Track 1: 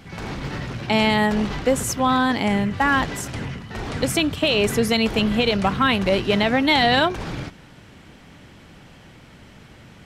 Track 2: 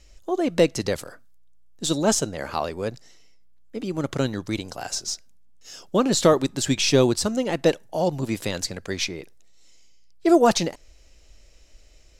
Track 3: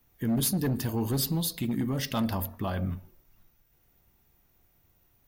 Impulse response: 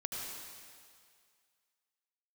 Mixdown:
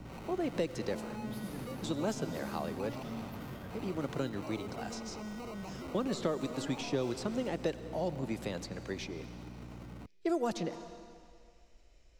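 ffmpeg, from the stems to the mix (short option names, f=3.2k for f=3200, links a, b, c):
-filter_complex "[0:a]acrusher=samples=26:mix=1:aa=0.000001,asoftclip=type=hard:threshold=-23.5dB,aeval=exprs='val(0)+0.0126*(sin(2*PI*60*n/s)+sin(2*PI*2*60*n/s)/2+sin(2*PI*3*60*n/s)/3+sin(2*PI*4*60*n/s)/4+sin(2*PI*5*60*n/s)/5)':c=same,volume=1dB[a];[1:a]volume=-9.5dB,asplit=2[b][c];[c]volume=-13dB[d];[2:a]adelay=900,volume=-11dB,asplit=2[e][f];[f]volume=-5.5dB[g];[a][e]amix=inputs=2:normalize=0,acrossover=split=1100|7200[h][i][j];[h]acompressor=threshold=-36dB:ratio=4[k];[i]acompressor=threshold=-43dB:ratio=4[l];[j]acompressor=threshold=-47dB:ratio=4[m];[k][l][m]amix=inputs=3:normalize=0,alimiter=level_in=12dB:limit=-24dB:level=0:latency=1:release=48,volume=-12dB,volume=0dB[n];[3:a]atrim=start_sample=2205[o];[d][g]amix=inputs=2:normalize=0[p];[p][o]afir=irnorm=-1:irlink=0[q];[b][n][q]amix=inputs=3:normalize=0,highshelf=f=3.9k:g=-9.5,acrossover=split=110|570|1300|4300[r][s][t][u][v];[r]acompressor=threshold=-54dB:ratio=4[w];[s]acompressor=threshold=-32dB:ratio=4[x];[t]acompressor=threshold=-41dB:ratio=4[y];[u]acompressor=threshold=-46dB:ratio=4[z];[v]acompressor=threshold=-49dB:ratio=4[aa];[w][x][y][z][aa]amix=inputs=5:normalize=0"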